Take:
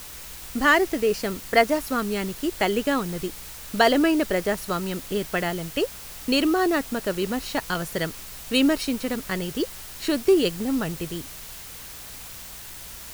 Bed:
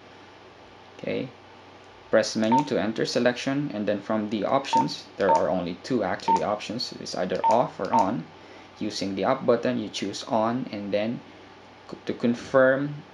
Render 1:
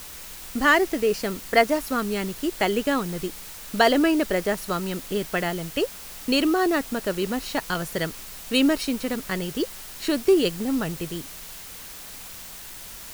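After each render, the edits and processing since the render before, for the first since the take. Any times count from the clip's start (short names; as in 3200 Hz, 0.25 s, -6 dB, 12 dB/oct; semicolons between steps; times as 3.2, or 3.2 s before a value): de-hum 60 Hz, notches 2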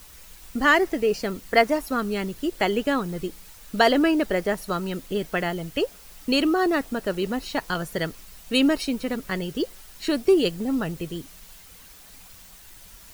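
denoiser 9 dB, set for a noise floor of -40 dBFS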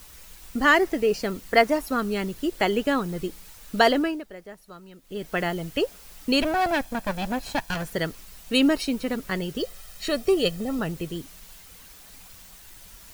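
3.85–5.41 dip -17.5 dB, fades 0.39 s; 6.42–7.91 minimum comb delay 1.2 ms; 9.58–10.79 comb 1.6 ms, depth 52%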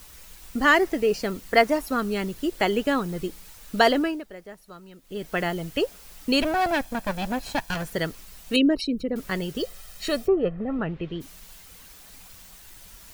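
8.56–9.16 formant sharpening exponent 2; 10.26–11.2 LPF 1400 Hz -> 3800 Hz 24 dB/oct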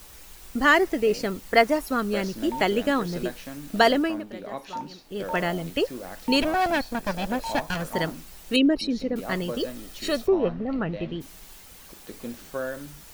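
add bed -12.5 dB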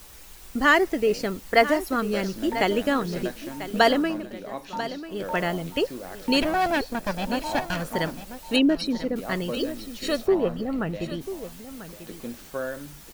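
echo 0.992 s -13 dB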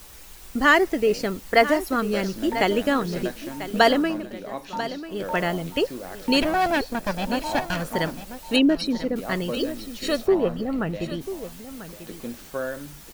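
gain +1.5 dB; limiter -3 dBFS, peak gain reduction 1 dB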